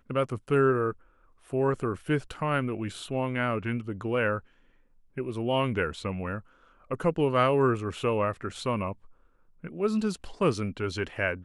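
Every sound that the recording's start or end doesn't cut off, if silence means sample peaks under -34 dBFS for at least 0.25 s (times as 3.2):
1.53–4.39
5.17–6.39
6.91–8.92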